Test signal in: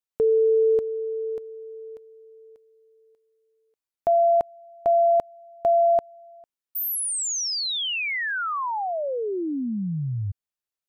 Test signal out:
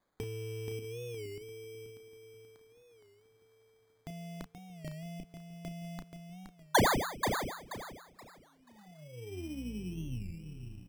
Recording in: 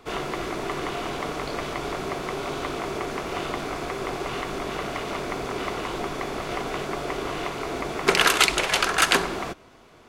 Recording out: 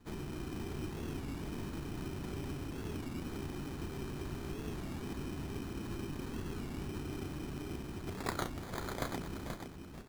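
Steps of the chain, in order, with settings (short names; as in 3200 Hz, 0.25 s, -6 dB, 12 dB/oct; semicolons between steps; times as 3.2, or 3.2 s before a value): octaver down 2 oct, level -5 dB; inverse Chebyshev band-stop 1000–5200 Hz, stop band 70 dB; compressor, threshold -35 dBFS; tilt shelf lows -9 dB, about 720 Hz; darkening echo 0.644 s, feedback 65%, low-pass 3700 Hz, level -19.5 dB; vocal rider within 3 dB 2 s; band shelf 1300 Hz +11.5 dB; doubler 33 ms -8 dB; on a send: feedback echo 0.48 s, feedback 28%, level -6.5 dB; on the sum: sample-and-hold 16×; record warp 33 1/3 rpm, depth 160 cents; gain +2.5 dB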